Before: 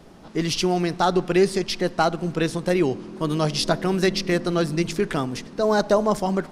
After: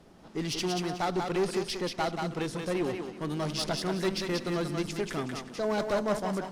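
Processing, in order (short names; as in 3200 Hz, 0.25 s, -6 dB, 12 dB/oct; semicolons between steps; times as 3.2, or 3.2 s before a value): one-sided clip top -19.5 dBFS; thinning echo 0.184 s, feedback 26%, high-pass 450 Hz, level -3.5 dB; gain -8 dB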